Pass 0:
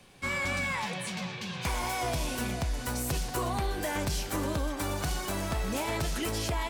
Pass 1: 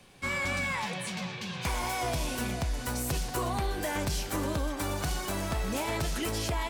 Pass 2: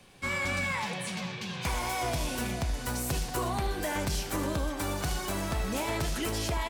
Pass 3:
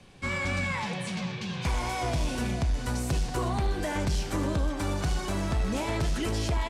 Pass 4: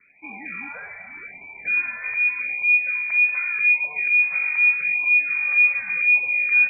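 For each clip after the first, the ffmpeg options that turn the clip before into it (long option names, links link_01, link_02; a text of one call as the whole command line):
ffmpeg -i in.wav -af anull out.wav
ffmpeg -i in.wav -af "aecho=1:1:76:0.224" out.wav
ffmpeg -i in.wav -af "lowpass=8400,lowshelf=frequency=310:gain=6.5,asoftclip=type=tanh:threshold=-18dB" out.wav
ffmpeg -i in.wav -af "asubboost=boost=9.5:cutoff=67,lowpass=frequency=2100:width_type=q:width=0.5098,lowpass=frequency=2100:width_type=q:width=0.6013,lowpass=frequency=2100:width_type=q:width=0.9,lowpass=frequency=2100:width_type=q:width=2.563,afreqshift=-2500,afftfilt=real='re*(1-between(b*sr/1024,260*pow(1600/260,0.5+0.5*sin(2*PI*0.84*pts/sr))/1.41,260*pow(1600/260,0.5+0.5*sin(2*PI*0.84*pts/sr))*1.41))':imag='im*(1-between(b*sr/1024,260*pow(1600/260,0.5+0.5*sin(2*PI*0.84*pts/sr))/1.41,260*pow(1600/260,0.5+0.5*sin(2*PI*0.84*pts/sr))*1.41))':win_size=1024:overlap=0.75,volume=-3.5dB" out.wav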